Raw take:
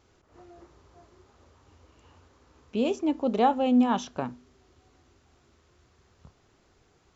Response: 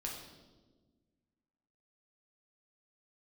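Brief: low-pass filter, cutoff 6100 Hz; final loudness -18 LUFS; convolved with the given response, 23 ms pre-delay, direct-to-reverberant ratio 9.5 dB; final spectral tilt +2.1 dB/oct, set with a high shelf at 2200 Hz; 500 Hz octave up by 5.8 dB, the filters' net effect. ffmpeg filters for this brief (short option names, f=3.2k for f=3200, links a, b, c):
-filter_complex "[0:a]lowpass=6.1k,equalizer=f=500:t=o:g=7,highshelf=f=2.2k:g=-7,asplit=2[a][b];[1:a]atrim=start_sample=2205,adelay=23[c];[b][c]afir=irnorm=-1:irlink=0,volume=-9.5dB[d];[a][d]amix=inputs=2:normalize=0,volume=5dB"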